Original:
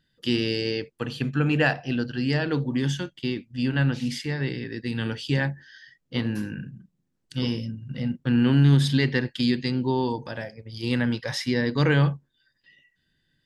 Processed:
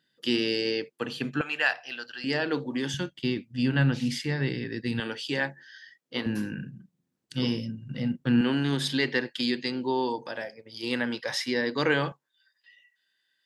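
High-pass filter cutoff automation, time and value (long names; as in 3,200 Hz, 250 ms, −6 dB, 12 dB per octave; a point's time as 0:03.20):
240 Hz
from 0:01.41 990 Hz
from 0:02.24 300 Hz
from 0:02.94 93 Hz
from 0:05.00 330 Hz
from 0:06.26 130 Hz
from 0:08.41 320 Hz
from 0:12.12 840 Hz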